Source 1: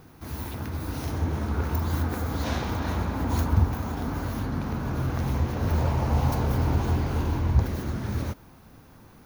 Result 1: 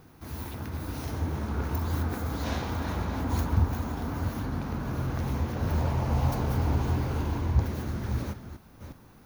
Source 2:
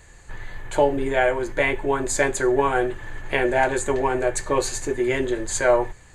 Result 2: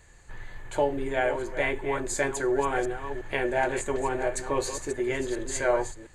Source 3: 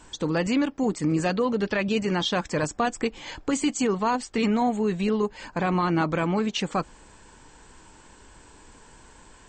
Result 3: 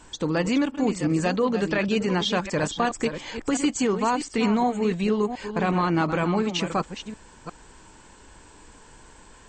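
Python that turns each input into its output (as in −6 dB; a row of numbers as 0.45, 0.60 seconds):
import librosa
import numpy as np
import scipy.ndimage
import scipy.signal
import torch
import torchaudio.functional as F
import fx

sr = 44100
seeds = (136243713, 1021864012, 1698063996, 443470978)

y = fx.reverse_delay(x, sr, ms=357, wet_db=-9.5)
y = y * 10.0 ** (-12 / 20.0) / np.max(np.abs(y))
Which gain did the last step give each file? −3.0, −6.5, +0.5 decibels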